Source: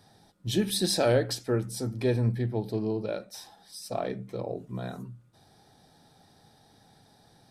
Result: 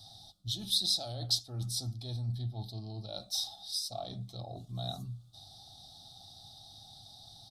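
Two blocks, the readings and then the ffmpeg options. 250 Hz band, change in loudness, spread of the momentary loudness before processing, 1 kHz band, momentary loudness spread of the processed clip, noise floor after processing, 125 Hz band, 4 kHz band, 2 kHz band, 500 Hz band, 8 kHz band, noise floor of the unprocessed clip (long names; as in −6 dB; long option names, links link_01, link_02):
−15.5 dB, −5.5 dB, 18 LU, −8.5 dB, 20 LU, −56 dBFS, −6.0 dB, +3.0 dB, below −25 dB, −18.5 dB, −2.0 dB, −61 dBFS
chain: -af "asuperstop=centerf=970:order=4:qfactor=3.4,areverse,acompressor=threshold=-35dB:ratio=10,areverse,firequalizer=gain_entry='entry(110,0);entry(160,-10);entry(320,-14);entry(460,-23);entry(680,-3);entry(1000,-2);entry(1600,-24);entry(2400,-19);entry(3600,10);entry(7200,-1)':delay=0.05:min_phase=1,volume=5.5dB"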